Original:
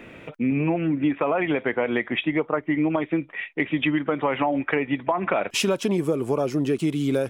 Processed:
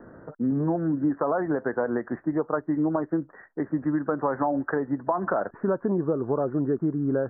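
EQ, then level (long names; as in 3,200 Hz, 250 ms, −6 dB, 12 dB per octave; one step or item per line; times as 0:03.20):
Butterworth low-pass 1,700 Hz 96 dB per octave
−2.0 dB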